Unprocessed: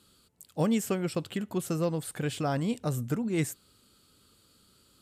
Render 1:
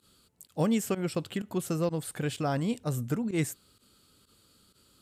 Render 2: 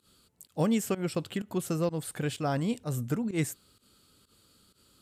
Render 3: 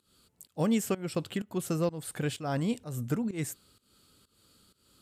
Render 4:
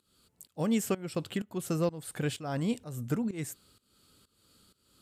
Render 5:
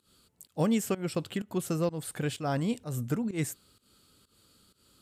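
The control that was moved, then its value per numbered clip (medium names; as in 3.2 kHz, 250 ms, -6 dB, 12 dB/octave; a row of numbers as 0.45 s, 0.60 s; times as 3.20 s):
volume shaper, release: 62 ms, 107 ms, 274 ms, 413 ms, 183 ms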